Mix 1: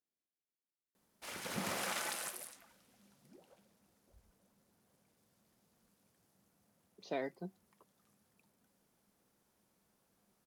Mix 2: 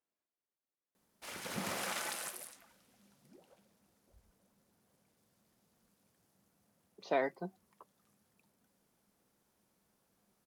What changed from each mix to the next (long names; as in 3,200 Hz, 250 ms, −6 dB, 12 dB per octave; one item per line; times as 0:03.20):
speech: add parametric band 1,100 Hz +11 dB 2.3 octaves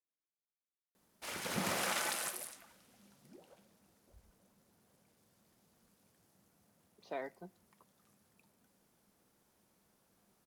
speech −10.5 dB
reverb: on